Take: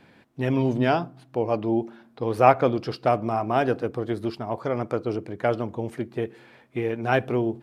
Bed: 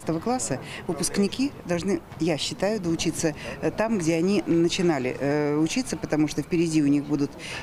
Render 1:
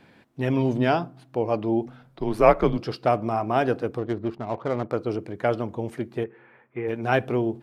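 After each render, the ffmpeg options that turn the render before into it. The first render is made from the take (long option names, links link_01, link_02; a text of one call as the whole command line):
ffmpeg -i in.wav -filter_complex "[0:a]asplit=3[link_01][link_02][link_03];[link_01]afade=type=out:start_time=1.85:duration=0.02[link_04];[link_02]afreqshift=-99,afade=type=in:start_time=1.85:duration=0.02,afade=type=out:start_time=2.77:duration=0.02[link_05];[link_03]afade=type=in:start_time=2.77:duration=0.02[link_06];[link_04][link_05][link_06]amix=inputs=3:normalize=0,asettb=1/sr,asplit=3[link_07][link_08][link_09];[link_07]atrim=end=3.984[link_10];[link_08]atrim=start=3.98:end=4.94,asetpts=PTS-STARTPTS,afade=type=in:duration=0.004:curve=qsin,afade=type=out:start_time=0.956:duration=0.004:curve=qsin,adynamicsmooth=sensitivity=5:basefreq=860[link_11];[link_09]atrim=start=4.936[link_12];[link_10][link_11]acrossfade=duration=0.004:curve1=hsin:curve2=qsin[link_13];[link_13][link_12]acrossfade=duration=0.004:curve1=qsin:curve2=hsin,asplit=3[link_14][link_15][link_16];[link_14]afade=type=out:start_time=6.23:duration=0.02[link_17];[link_15]highpass=130,equalizer=frequency=180:width_type=q:width=4:gain=-9,equalizer=frequency=280:width_type=q:width=4:gain=-10,equalizer=frequency=650:width_type=q:width=4:gain=-7,lowpass=frequency=2200:width=0.5412,lowpass=frequency=2200:width=1.3066,afade=type=in:start_time=6.23:duration=0.02,afade=type=out:start_time=6.87:duration=0.02[link_18];[link_16]afade=type=in:start_time=6.87:duration=0.02[link_19];[link_17][link_18][link_19]amix=inputs=3:normalize=0" out.wav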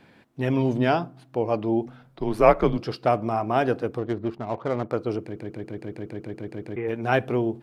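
ffmpeg -i in.wav -filter_complex "[0:a]asplit=12[link_01][link_02][link_03][link_04][link_05][link_06][link_07][link_08][link_09][link_10][link_11][link_12];[link_01]atrim=end=5.362[link_13];[link_02]atrim=start=5.218:end=5.362[link_14];[link_03]atrim=start=5.218:end=5.362[link_15];[link_04]atrim=start=5.218:end=5.362[link_16];[link_05]atrim=start=5.218:end=5.362[link_17];[link_06]atrim=start=5.218:end=5.362[link_18];[link_07]atrim=start=5.218:end=5.362[link_19];[link_08]atrim=start=5.218:end=5.362[link_20];[link_09]atrim=start=5.218:end=5.362[link_21];[link_10]atrim=start=5.218:end=5.362[link_22];[link_11]atrim=start=5.218:end=5.362[link_23];[link_12]atrim=start=6.758[link_24];[link_13][link_14]acrossfade=duration=0.004:curve1=hsin:curve2=hsin[link_25];[link_25][link_15]acrossfade=duration=0.004:curve1=hsin:curve2=hsin[link_26];[link_26][link_16]acrossfade=duration=0.004:curve1=hsin:curve2=hsin[link_27];[link_27][link_17]acrossfade=duration=0.004:curve1=hsin:curve2=hsin[link_28];[link_28][link_18]acrossfade=duration=0.004:curve1=hsin:curve2=hsin[link_29];[link_29][link_19]acrossfade=duration=0.004:curve1=hsin:curve2=hsin[link_30];[link_30][link_20]acrossfade=duration=0.004:curve1=hsin:curve2=hsin[link_31];[link_31][link_21]acrossfade=duration=0.004:curve1=hsin:curve2=hsin[link_32];[link_32][link_22]acrossfade=duration=0.004:curve1=hsin:curve2=hsin[link_33];[link_33][link_23]acrossfade=duration=0.004:curve1=hsin:curve2=hsin[link_34];[link_34][link_24]acrossfade=duration=0.004:curve1=hsin:curve2=hsin" out.wav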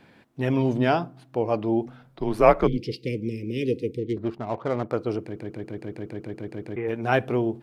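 ffmpeg -i in.wav -filter_complex "[0:a]asettb=1/sr,asplit=3[link_01][link_02][link_03];[link_01]atrim=end=2.674[link_04];[link_02]atrim=start=2.67:end=4.17,asetpts=PTS-STARTPTS,afade=type=in:duration=0.004:curve=qsin,afade=type=out:start_time=1.496:duration=0.004:curve=qsin,asuperstop=centerf=1000:order=20:qfactor=0.68[link_05];[link_03]atrim=start=4.166[link_06];[link_04][link_05]acrossfade=duration=0.004:curve1=hsin:curve2=qsin[link_07];[link_07][link_06]acrossfade=duration=0.004:curve1=qsin:curve2=hsin" out.wav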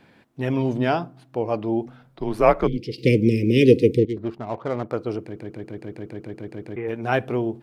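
ffmpeg -i in.wav -filter_complex "[0:a]asplit=3[link_01][link_02][link_03];[link_01]atrim=end=2.982[link_04];[link_02]atrim=start=2.978:end=4.052,asetpts=PTS-STARTPTS,volume=11.5dB[link_05];[link_03]atrim=start=4.048[link_06];[link_04][link_05]acrossfade=duration=0.004:curve1=hsin:curve2=hsin[link_07];[link_07][link_06]acrossfade=duration=0.004:curve1=hsin:curve2=hsin" out.wav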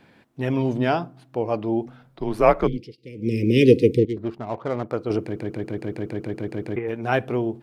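ffmpeg -i in.wav -filter_complex "[0:a]asettb=1/sr,asplit=3[link_01][link_02][link_03];[link_01]atrim=end=5.104[link_04];[link_02]atrim=start=5.1:end=6.79,asetpts=PTS-STARTPTS,afade=type=in:duration=0.004:curve=qsin,afade=type=out:start_time=1.686:duration=0.004:curve=qsin,acontrast=39[link_05];[link_03]atrim=start=6.786[link_06];[link_04][link_05]acrossfade=duration=0.004:curve1=hsin:curve2=qsin[link_07];[link_07][link_06]acrossfade=duration=0.004:curve1=qsin:curve2=hsin,asplit=3[link_08][link_09][link_10];[link_08]atrim=end=2.96,asetpts=PTS-STARTPTS,afade=type=out:start_time=2.68:duration=0.28:silence=0.0749894[link_11];[link_09]atrim=start=2.96:end=3.15,asetpts=PTS-STARTPTS,volume=-22.5dB[link_12];[link_10]atrim=start=3.15,asetpts=PTS-STARTPTS,afade=type=in:duration=0.28:silence=0.0749894[link_13];[link_11][link_12][link_13]concat=n=3:v=0:a=1" out.wav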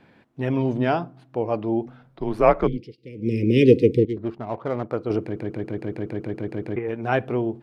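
ffmpeg -i in.wav -af "highshelf=frequency=4900:gain=-10.5" out.wav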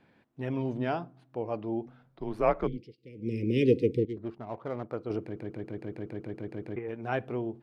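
ffmpeg -i in.wav -af "volume=-9dB" out.wav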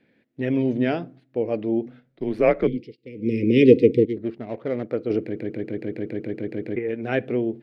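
ffmpeg -i in.wav -af "agate=range=-8dB:threshold=-52dB:ratio=16:detection=peak,equalizer=frequency=125:width_type=o:width=1:gain=3,equalizer=frequency=250:width_type=o:width=1:gain=9,equalizer=frequency=500:width_type=o:width=1:gain=10,equalizer=frequency=1000:width_type=o:width=1:gain=-9,equalizer=frequency=2000:width_type=o:width=1:gain=12,equalizer=frequency=4000:width_type=o:width=1:gain=6" out.wav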